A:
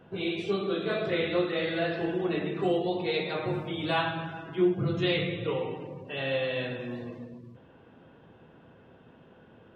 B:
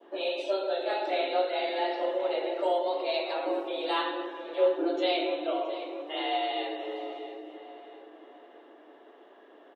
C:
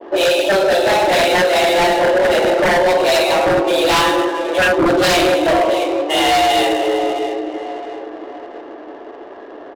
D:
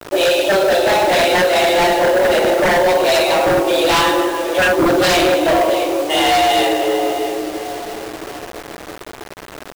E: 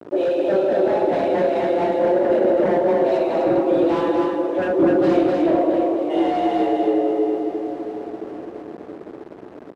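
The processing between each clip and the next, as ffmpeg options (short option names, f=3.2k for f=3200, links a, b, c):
-filter_complex "[0:a]adynamicequalizer=threshold=0.00398:dfrequency=1500:dqfactor=1:tfrequency=1500:tqfactor=1:attack=5:release=100:ratio=0.375:range=2.5:mode=cutabove:tftype=bell,afreqshift=190,asplit=2[a][b];[b]adelay=669,lowpass=f=3.2k:p=1,volume=-12dB,asplit=2[c][d];[d]adelay=669,lowpass=f=3.2k:p=1,volume=0.45,asplit=2[e][f];[f]adelay=669,lowpass=f=3.2k:p=1,volume=0.45,asplit=2[g][h];[h]adelay=669,lowpass=f=3.2k:p=1,volume=0.45,asplit=2[i][j];[j]adelay=669,lowpass=f=3.2k:p=1,volume=0.45[k];[a][c][e][g][i][k]amix=inputs=6:normalize=0"
-af "aeval=exprs='0.188*sin(PI/2*3.98*val(0)/0.188)':c=same,adynamicsmooth=sensitivity=7:basefreq=1k,volume=4.5dB"
-af "acrusher=bits=4:mix=0:aa=0.000001"
-filter_complex "[0:a]bandpass=f=290:t=q:w=1.2:csg=0,asplit=2[a][b];[b]aecho=0:1:251:0.631[c];[a][c]amix=inputs=2:normalize=0"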